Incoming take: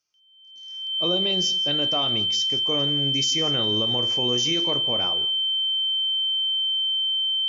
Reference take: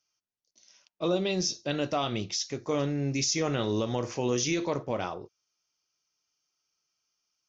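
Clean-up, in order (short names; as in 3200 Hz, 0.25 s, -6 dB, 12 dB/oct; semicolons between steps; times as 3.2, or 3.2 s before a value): notch 3100 Hz, Q 30; inverse comb 0.168 s -18.5 dB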